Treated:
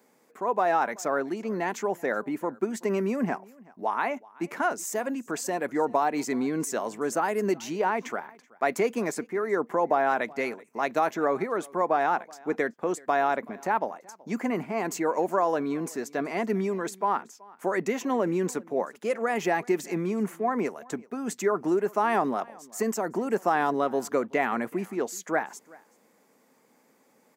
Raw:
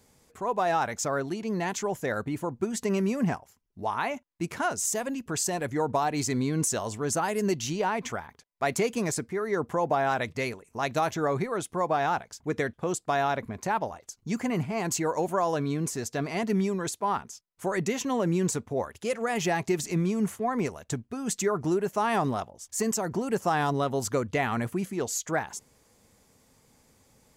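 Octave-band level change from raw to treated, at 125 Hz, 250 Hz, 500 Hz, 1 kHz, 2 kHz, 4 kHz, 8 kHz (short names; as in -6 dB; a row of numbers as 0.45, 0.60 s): -8.0, 0.0, +2.0, +2.0, +1.5, -6.0, -6.5 dB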